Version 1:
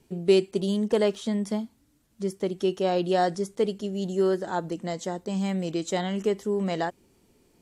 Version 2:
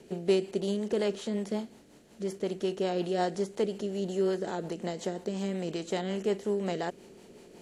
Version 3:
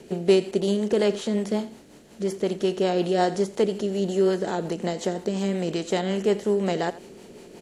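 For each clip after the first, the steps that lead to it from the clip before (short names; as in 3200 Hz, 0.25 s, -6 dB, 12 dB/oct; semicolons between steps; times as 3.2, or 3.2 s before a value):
per-bin compression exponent 0.6; rotary speaker horn 5.5 Hz; gain -6.5 dB
echo 86 ms -17 dB; gain +7 dB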